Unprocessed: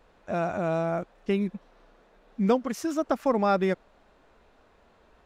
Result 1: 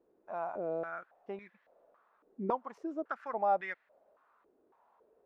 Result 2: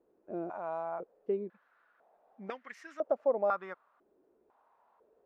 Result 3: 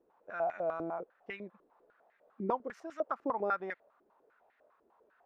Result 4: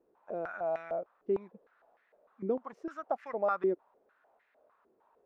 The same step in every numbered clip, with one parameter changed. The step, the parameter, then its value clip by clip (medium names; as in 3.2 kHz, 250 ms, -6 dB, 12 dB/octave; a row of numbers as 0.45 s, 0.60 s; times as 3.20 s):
step-sequenced band-pass, rate: 3.6 Hz, 2 Hz, 10 Hz, 6.6 Hz